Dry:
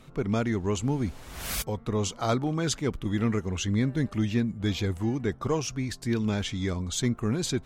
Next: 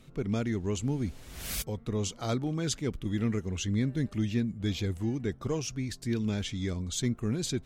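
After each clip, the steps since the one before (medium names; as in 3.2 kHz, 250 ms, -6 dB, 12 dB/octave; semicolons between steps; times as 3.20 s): peaking EQ 1 kHz -7.5 dB 1.5 oct; trim -2.5 dB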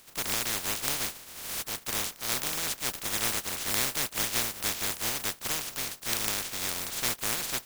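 spectral contrast reduction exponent 0.1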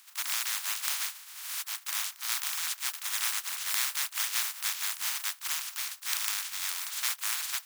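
high-pass 1 kHz 24 dB/octave; trim -1 dB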